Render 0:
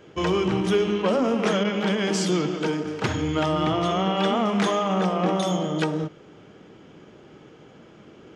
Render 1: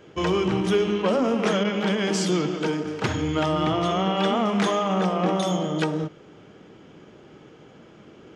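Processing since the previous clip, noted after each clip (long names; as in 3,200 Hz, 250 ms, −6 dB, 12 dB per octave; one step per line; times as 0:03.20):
no processing that can be heard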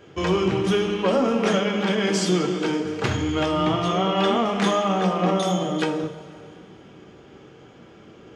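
coupled-rooms reverb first 0.3 s, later 2.8 s, from −18 dB, DRR 3 dB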